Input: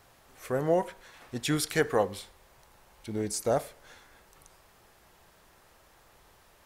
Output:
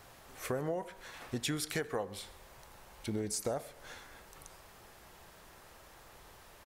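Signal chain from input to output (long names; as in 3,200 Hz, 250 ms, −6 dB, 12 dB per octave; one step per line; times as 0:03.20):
downward compressor 8 to 1, threshold −36 dBFS, peak gain reduction 16.5 dB
single-tap delay 132 ms −22 dB
level +3.5 dB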